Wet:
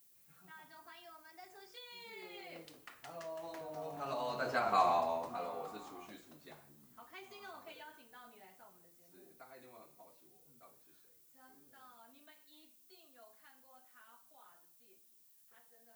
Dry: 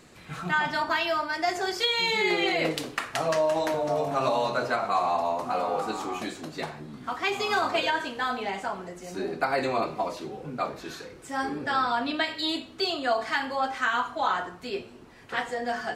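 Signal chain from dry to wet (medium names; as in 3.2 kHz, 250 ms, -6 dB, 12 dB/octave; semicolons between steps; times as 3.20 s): Doppler pass-by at 4.79 s, 12 m/s, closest 2.5 m; added noise violet -62 dBFS; trim -4 dB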